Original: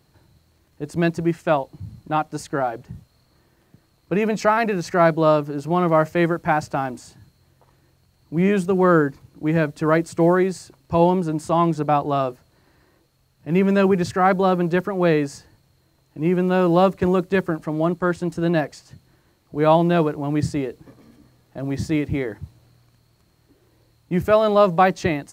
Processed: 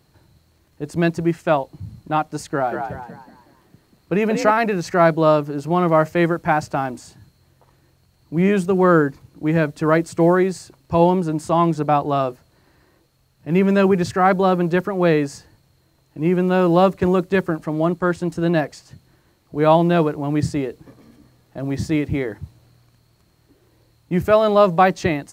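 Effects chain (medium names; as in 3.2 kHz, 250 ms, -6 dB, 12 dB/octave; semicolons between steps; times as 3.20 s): 2.50–4.51 s: frequency-shifting echo 185 ms, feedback 38%, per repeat +57 Hz, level -6 dB; trim +1.5 dB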